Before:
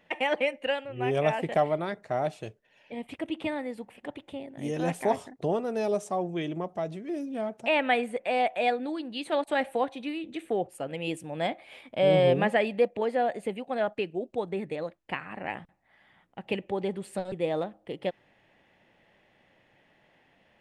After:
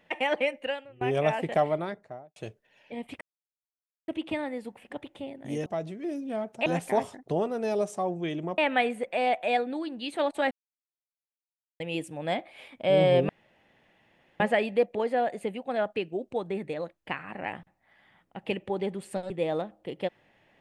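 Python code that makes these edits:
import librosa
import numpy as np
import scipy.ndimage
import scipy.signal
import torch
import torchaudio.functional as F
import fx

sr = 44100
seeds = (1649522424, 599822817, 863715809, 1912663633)

y = fx.studio_fade_out(x, sr, start_s=1.73, length_s=0.63)
y = fx.edit(y, sr, fx.fade_out_to(start_s=0.56, length_s=0.45, floor_db=-23.0),
    fx.insert_silence(at_s=3.21, length_s=0.87),
    fx.move(start_s=6.71, length_s=1.0, to_s=4.79),
    fx.silence(start_s=9.64, length_s=1.29),
    fx.insert_room_tone(at_s=12.42, length_s=1.11), tone=tone)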